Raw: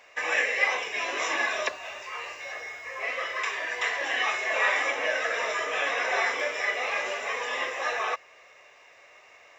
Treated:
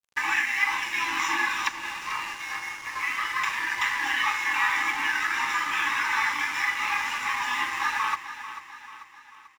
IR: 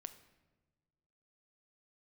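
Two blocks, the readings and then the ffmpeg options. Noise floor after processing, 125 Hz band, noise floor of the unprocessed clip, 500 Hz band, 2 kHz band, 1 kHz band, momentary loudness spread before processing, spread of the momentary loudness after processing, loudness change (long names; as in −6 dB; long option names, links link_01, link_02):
−50 dBFS, can't be measured, −55 dBFS, −19.0 dB, +2.0 dB, +3.5 dB, 12 LU, 9 LU, +2.0 dB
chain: -af "afftfilt=real='re*(1-between(b*sr/4096,360,790))':imag='im*(1-between(b*sr/4096,360,790))':win_size=4096:overlap=0.75,equalizer=frequency=620:width_type=o:width=2:gain=6.5,acompressor=threshold=-30dB:ratio=2,aeval=exprs='sgn(val(0))*max(abs(val(0))-0.00596,0)':channel_layout=same,aecho=1:1:441|882|1323|1764|2205:0.251|0.128|0.0653|0.0333|0.017,volume=5.5dB"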